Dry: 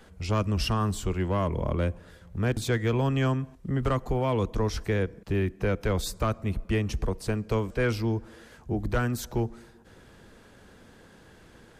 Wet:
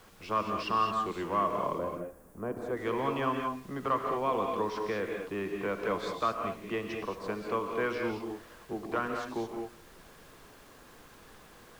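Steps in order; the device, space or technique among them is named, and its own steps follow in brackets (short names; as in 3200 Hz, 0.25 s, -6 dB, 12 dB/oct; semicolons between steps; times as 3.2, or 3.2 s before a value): horn gramophone (BPF 280–3600 Hz; bell 1100 Hz +10.5 dB 0.33 oct; wow and flutter; pink noise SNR 23 dB); 1.78–2.77 EQ curve 690 Hz 0 dB, 3700 Hz -21 dB, 9900 Hz -1 dB; non-linear reverb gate 0.24 s rising, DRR 2.5 dB; gain -4.5 dB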